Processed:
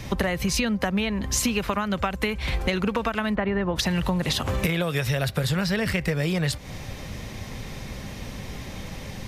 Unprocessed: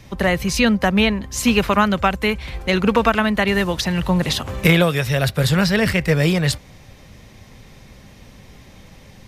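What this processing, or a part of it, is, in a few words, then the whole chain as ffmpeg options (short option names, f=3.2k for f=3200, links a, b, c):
serial compression, leveller first: -filter_complex "[0:a]asplit=3[a][b][c];[a]afade=t=out:st=3.34:d=0.02[d];[b]lowpass=1.5k,afade=t=in:st=3.34:d=0.02,afade=t=out:st=3.75:d=0.02[e];[c]afade=t=in:st=3.75:d=0.02[f];[d][e][f]amix=inputs=3:normalize=0,acompressor=threshold=-20dB:ratio=2.5,acompressor=threshold=-30dB:ratio=6,volume=8dB"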